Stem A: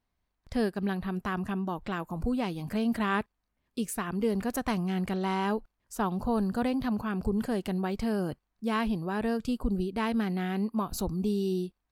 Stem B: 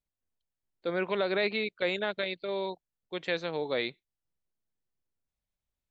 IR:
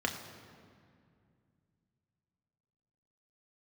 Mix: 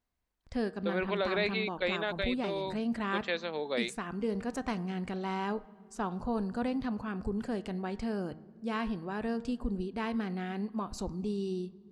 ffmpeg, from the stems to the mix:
-filter_complex "[0:a]lowpass=f=8.5k:w=0.5412,lowpass=f=8.5k:w=1.3066,bandreject=f=155.6:t=h:w=4,bandreject=f=311.2:t=h:w=4,bandreject=f=466.8:t=h:w=4,bandreject=f=622.4:t=h:w=4,bandreject=f=778:t=h:w=4,bandreject=f=933.6:t=h:w=4,bandreject=f=1.0892k:t=h:w=4,bandreject=f=1.2448k:t=h:w=4,bandreject=f=1.4004k:t=h:w=4,bandreject=f=1.556k:t=h:w=4,bandreject=f=1.7116k:t=h:w=4,bandreject=f=1.8672k:t=h:w=4,bandreject=f=2.0228k:t=h:w=4,bandreject=f=2.1784k:t=h:w=4,volume=-5.5dB,asplit=2[a][b];[b]volume=-19.5dB[c];[1:a]highpass=f=250:p=1,volume=-1.5dB[d];[2:a]atrim=start_sample=2205[e];[c][e]afir=irnorm=-1:irlink=0[f];[a][d][f]amix=inputs=3:normalize=0"

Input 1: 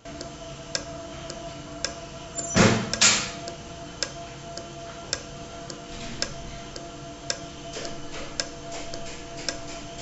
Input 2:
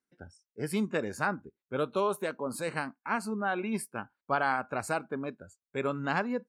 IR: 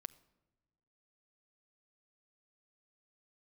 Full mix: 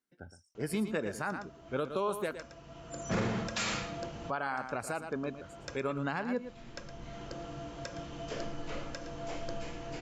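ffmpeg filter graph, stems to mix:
-filter_complex "[0:a]lowpass=f=1.8k:p=1,acontrast=36,adelay=550,volume=-8dB,asplit=2[a][b];[b]volume=-19.5dB[c];[1:a]volume=-1dB,asplit=3[d][e][f];[d]atrim=end=2.36,asetpts=PTS-STARTPTS,afade=t=out:st=2.356:d=0.004:c=hsin[g];[e]atrim=start=2.36:end=4.04,asetpts=PTS-STARTPTS,volume=0[h];[f]atrim=start=4.04,asetpts=PTS-STARTPTS,afade=t=in:d=0.004:c=hsin[i];[g][h][i]concat=n=3:v=0:a=1,asplit=3[j][k][l];[k]volume=-11.5dB[m];[l]apad=whole_len=465998[n];[a][n]sidechaincompress=threshold=-44dB:ratio=5:attack=16:release=792[o];[c][m]amix=inputs=2:normalize=0,aecho=0:1:114:1[p];[o][j][p]amix=inputs=3:normalize=0,alimiter=limit=-23dB:level=0:latency=1:release=121"

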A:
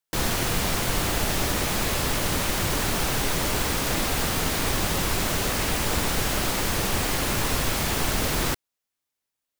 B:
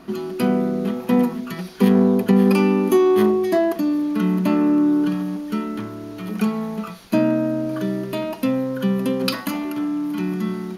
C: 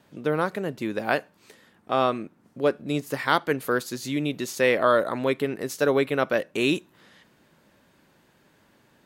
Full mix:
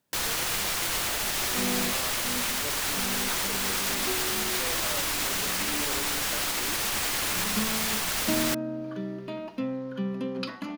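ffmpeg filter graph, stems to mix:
-filter_complex "[0:a]tiltshelf=f=640:g=-7.5,alimiter=limit=-16dB:level=0:latency=1:release=195,volume=-2.5dB[a];[1:a]lowpass=5k,adelay=1150,volume=-10.5dB[b];[2:a]volume=-19dB,asplit=2[c][d];[d]apad=whole_len=525802[e];[b][e]sidechaincompress=threshold=-54dB:ratio=8:attack=16:release=461[f];[a][f][c]amix=inputs=3:normalize=0"

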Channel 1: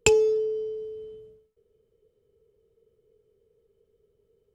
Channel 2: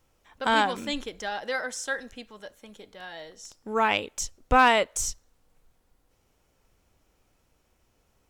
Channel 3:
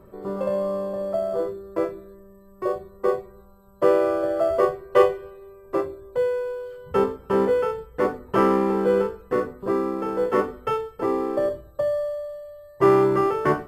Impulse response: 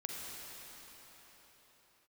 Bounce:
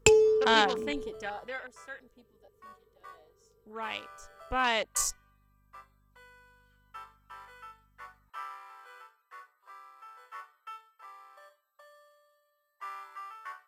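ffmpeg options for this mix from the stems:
-filter_complex "[0:a]volume=-1dB[a];[1:a]afwtdn=0.0178,highshelf=f=2.9k:g=11.5,aeval=exprs='val(0)+0.00141*(sin(2*PI*50*n/s)+sin(2*PI*2*50*n/s)/2+sin(2*PI*3*50*n/s)/3+sin(2*PI*4*50*n/s)/4+sin(2*PI*5*50*n/s)/5)':c=same,volume=3.5dB,afade=t=out:st=1.09:d=0.62:silence=0.237137,afade=t=in:st=4.44:d=0.33:silence=0.446684[b];[2:a]highpass=f=1.1k:w=0.5412,highpass=f=1.1k:w=1.3066,volume=-15dB[c];[a][b][c]amix=inputs=3:normalize=0"

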